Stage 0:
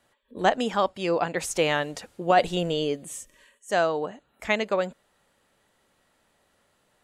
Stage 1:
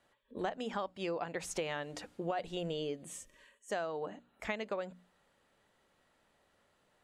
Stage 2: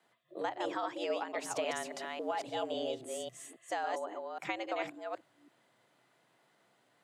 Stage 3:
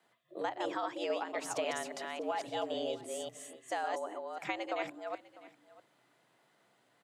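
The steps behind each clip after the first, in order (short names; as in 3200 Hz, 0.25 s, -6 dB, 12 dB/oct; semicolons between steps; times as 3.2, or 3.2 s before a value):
high shelf 7100 Hz -9 dB; notches 60/120/180/240/300 Hz; compressor 6:1, threshold -30 dBFS, peak gain reduction 14.5 dB; gain -4 dB
reverse delay 0.274 s, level -3 dB; frequency shift +110 Hz
echo 0.649 s -19.5 dB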